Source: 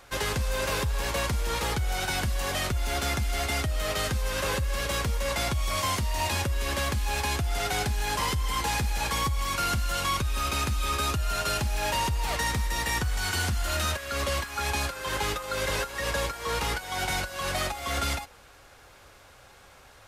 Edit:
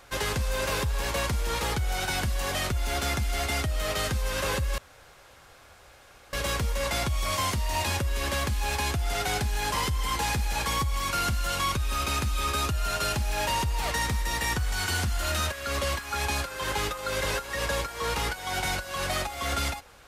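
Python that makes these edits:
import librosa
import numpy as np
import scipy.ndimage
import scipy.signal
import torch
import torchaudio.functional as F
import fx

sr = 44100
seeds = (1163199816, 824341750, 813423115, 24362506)

y = fx.edit(x, sr, fx.insert_room_tone(at_s=4.78, length_s=1.55), tone=tone)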